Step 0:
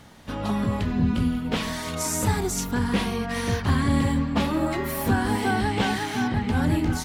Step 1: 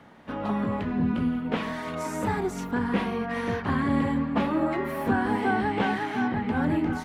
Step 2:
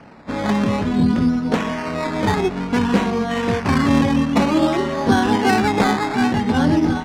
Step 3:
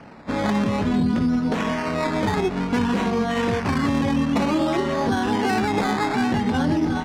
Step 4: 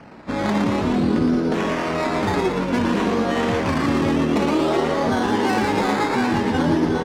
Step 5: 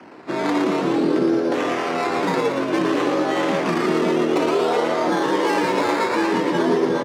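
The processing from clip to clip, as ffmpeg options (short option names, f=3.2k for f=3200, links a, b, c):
-filter_complex "[0:a]acrossover=split=160 2600:gain=0.224 1 0.141[a][b][c];[a][b][c]amix=inputs=3:normalize=0"
-af "acrusher=samples=12:mix=1:aa=0.000001:lfo=1:lforange=7.2:lforate=0.55,adynamicsmooth=sensitivity=1.5:basefreq=3.5k,volume=9dB"
-af "alimiter=limit=-13.5dB:level=0:latency=1:release=73"
-filter_complex "[0:a]asplit=8[a][b][c][d][e][f][g][h];[b]adelay=115,afreqshift=83,volume=-5dB[i];[c]adelay=230,afreqshift=166,volume=-10.2dB[j];[d]adelay=345,afreqshift=249,volume=-15.4dB[k];[e]adelay=460,afreqshift=332,volume=-20.6dB[l];[f]adelay=575,afreqshift=415,volume=-25.8dB[m];[g]adelay=690,afreqshift=498,volume=-31dB[n];[h]adelay=805,afreqshift=581,volume=-36.2dB[o];[a][i][j][k][l][m][n][o]amix=inputs=8:normalize=0"
-af "afreqshift=86"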